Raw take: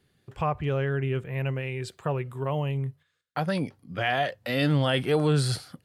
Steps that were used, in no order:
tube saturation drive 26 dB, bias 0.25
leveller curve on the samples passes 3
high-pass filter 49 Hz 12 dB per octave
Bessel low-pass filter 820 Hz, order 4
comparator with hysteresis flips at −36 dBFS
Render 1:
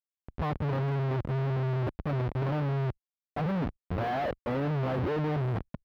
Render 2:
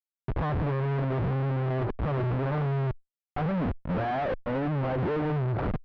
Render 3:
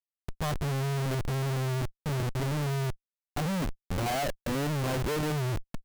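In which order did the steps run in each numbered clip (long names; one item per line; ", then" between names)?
tube saturation, then comparator with hysteresis, then Bessel low-pass filter, then leveller curve on the samples, then high-pass filter
high-pass filter, then leveller curve on the samples, then comparator with hysteresis, then Bessel low-pass filter, then tube saturation
high-pass filter, then tube saturation, then Bessel low-pass filter, then comparator with hysteresis, then leveller curve on the samples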